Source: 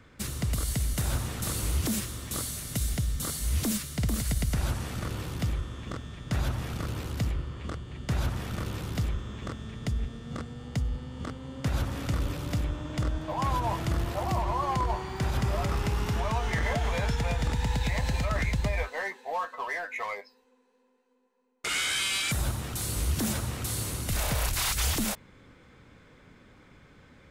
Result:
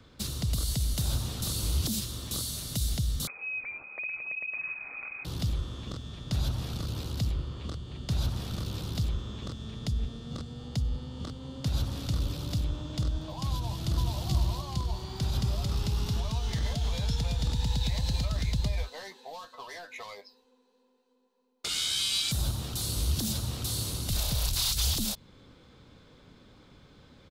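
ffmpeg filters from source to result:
-filter_complex "[0:a]asettb=1/sr,asplit=3[s0][s1][s2];[s0]atrim=end=3.274[s3];[s1]atrim=start=3.27:end=5.25,asetpts=PTS-STARTPTS,afade=t=in:d=0.004:c=qsin,afade=t=out:st=1.976:d=0.004:c=qsin,lowpass=f=2200:t=q:w=0.5098,lowpass=f=2200:t=q:w=0.6013,lowpass=f=2200:t=q:w=0.9,lowpass=f=2200:t=q:w=2.563,afreqshift=-2600[s4];[s2]atrim=start=5.246[s5];[s3][s4]acrossfade=d=0.004:c1=hsin:c2=qsin[s6];[s6][s5]acrossfade=d=0.004:c1=qsin:c2=hsin,asplit=2[s7][s8];[s8]afade=t=in:st=13.54:d=0.01,afade=t=out:st=14.18:d=0.01,aecho=0:1:430|860|1290|1720:0.944061|0.283218|0.0849655|0.0254896[s9];[s7][s9]amix=inputs=2:normalize=0,equalizer=f=2000:t=o:w=1:g=-9,equalizer=f=4000:t=o:w=1:g=9,equalizer=f=8000:t=o:w=1:g=-3,acrossover=split=220|3000[s10][s11][s12];[s11]acompressor=threshold=0.00794:ratio=6[s13];[s10][s13][s12]amix=inputs=3:normalize=0"

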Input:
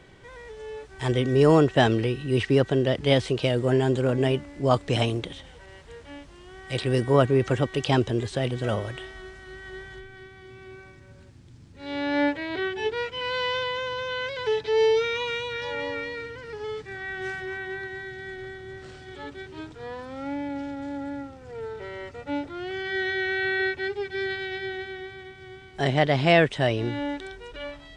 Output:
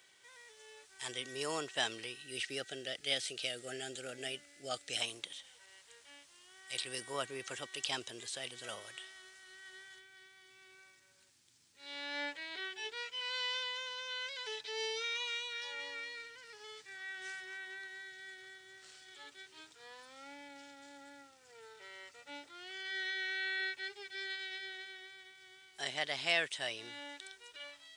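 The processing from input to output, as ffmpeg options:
-filter_complex "[0:a]asettb=1/sr,asplit=3[s0][s1][s2];[s0]atrim=end=2.214[s3];[s1]atrim=start=2.21:end=5.01,asetpts=PTS-STARTPTS,afade=t=in:d=0.004:c=qsin,afade=t=out:st=2.796:d=0.004:c=qsin,asuperstop=centerf=1000:order=8:qfactor=2.6[s4];[s2]atrim=start=5.006[s5];[s3][s4]acrossfade=d=0.004:c1=hsin:c2=qsin[s6];[s6][s5]acrossfade=d=0.004:c1=qsin:c2=hsin,aderivative,volume=1.19"

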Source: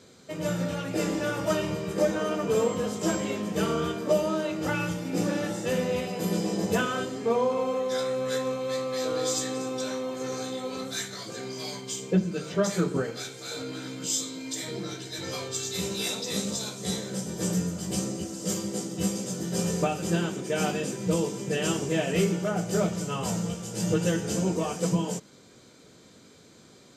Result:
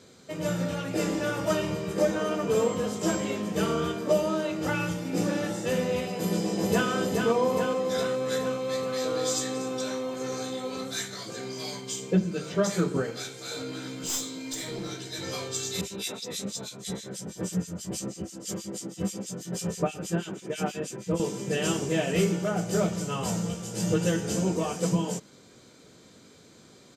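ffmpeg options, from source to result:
-filter_complex "[0:a]asplit=2[s0][s1];[s1]afade=t=in:st=6.15:d=0.01,afade=t=out:st=6.89:d=0.01,aecho=0:1:420|840|1260|1680|2100|2520|2940|3360|3780|4200:0.630957|0.410122|0.266579|0.173277|0.11263|0.0732094|0.0475861|0.030931|0.0201051|0.0130683[s2];[s0][s2]amix=inputs=2:normalize=0,asettb=1/sr,asplit=3[s3][s4][s5];[s3]atrim=end=13.894[s6];[s4]atrim=start=13.89:end=14.9,asetpts=PTS-STARTPTS,afade=t=in:d=0.004:c=qsin,afade=t=out:st=1.006:d=0.004:c=qsin,aeval=exprs='clip(val(0),-1,0.0266)':c=same[s7];[s5]atrim=start=14.896[s8];[s6][s7]acrossfade=d=0.004:c1=hsin:c2=qsin[s9];[s9][s8]acrossfade=d=0.004:c1=qsin:c2=hsin,asettb=1/sr,asplit=3[s10][s11][s12];[s10]atrim=end=15.814[s13];[s11]atrim=start=15.81:end=21.2,asetpts=PTS-STARTPTS,afade=t=in:d=0.004:c=qsin,afade=t=out:st=5.386:d=0.004:c=qsin,acrossover=split=2100[s14][s15];[s14]aeval=exprs='val(0)*(1-1/2+1/2*cos(2*PI*6.2*n/s))':c=same[s16];[s15]aeval=exprs='val(0)*(1-1/2-1/2*cos(2*PI*6.2*n/s))':c=same[s17];[s16][s17]amix=inputs=2:normalize=0[s18];[s12]atrim=start=21.196[s19];[s13][s18]acrossfade=d=0.004:c1=hsin:c2=qsin[s20];[s20][s19]acrossfade=d=0.004:c1=qsin:c2=hsin"

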